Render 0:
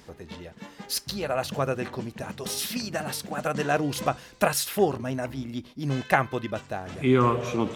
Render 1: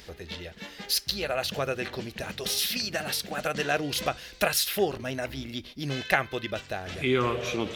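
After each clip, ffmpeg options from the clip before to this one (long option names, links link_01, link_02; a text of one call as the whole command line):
ffmpeg -i in.wav -filter_complex "[0:a]equalizer=frequency=125:width_type=o:width=1:gain=-10,equalizer=frequency=250:width_type=o:width=1:gain=-9,equalizer=frequency=500:width_type=o:width=1:gain=-3,equalizer=frequency=1000:width_type=o:width=1:gain=-11,equalizer=frequency=4000:width_type=o:width=1:gain=3,equalizer=frequency=8000:width_type=o:width=1:gain=-7,asplit=2[link_01][link_02];[link_02]acompressor=threshold=-39dB:ratio=6,volume=-0.5dB[link_03];[link_01][link_03]amix=inputs=2:normalize=0,volume=2.5dB" out.wav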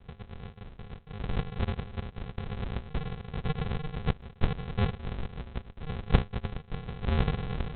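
ffmpeg -i in.wav -af "lowshelf=frequency=150:gain=-10.5,aresample=8000,acrusher=samples=26:mix=1:aa=0.000001,aresample=44100" out.wav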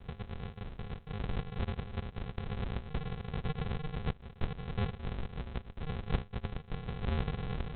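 ffmpeg -i in.wav -af "acompressor=threshold=-41dB:ratio=2,volume=3.5dB" out.wav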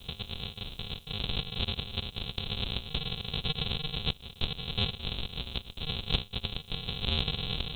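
ffmpeg -i in.wav -af "aexciter=amount=9.2:drive=8.9:freq=2900" out.wav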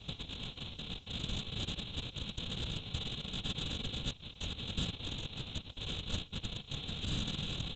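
ffmpeg -i in.wav -af "aresample=16000,asoftclip=type=tanh:threshold=-27dB,aresample=44100,afftfilt=real='hypot(re,im)*cos(2*PI*random(0))':imag='hypot(re,im)*sin(2*PI*random(1))':win_size=512:overlap=0.75,volume=3.5dB" out.wav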